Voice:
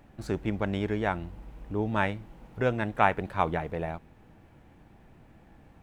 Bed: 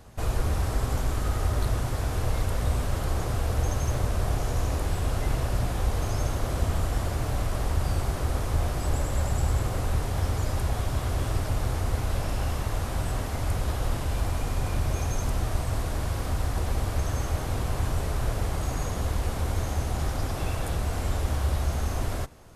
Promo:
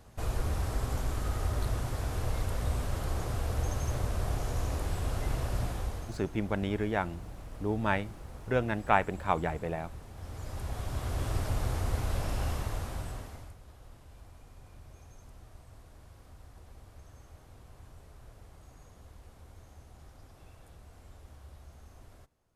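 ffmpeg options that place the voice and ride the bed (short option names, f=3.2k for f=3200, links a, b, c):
-filter_complex "[0:a]adelay=5900,volume=-2dB[a];[1:a]volume=10dB,afade=t=out:st=5.64:d=0.55:silence=0.199526,afade=t=in:st=10.16:d=1.25:silence=0.16788,afade=t=out:st=12.49:d=1.06:silence=0.0891251[b];[a][b]amix=inputs=2:normalize=0"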